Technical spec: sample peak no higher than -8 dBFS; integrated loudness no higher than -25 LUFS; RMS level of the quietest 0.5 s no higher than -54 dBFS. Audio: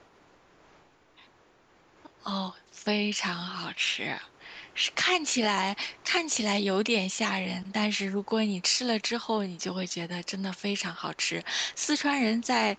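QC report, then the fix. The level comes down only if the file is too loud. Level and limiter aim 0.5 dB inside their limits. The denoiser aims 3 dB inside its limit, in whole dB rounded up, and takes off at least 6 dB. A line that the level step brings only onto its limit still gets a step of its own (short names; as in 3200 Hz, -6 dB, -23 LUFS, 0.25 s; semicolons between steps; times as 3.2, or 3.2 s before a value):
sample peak -11.0 dBFS: OK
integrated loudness -29.0 LUFS: OK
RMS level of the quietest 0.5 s -61 dBFS: OK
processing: none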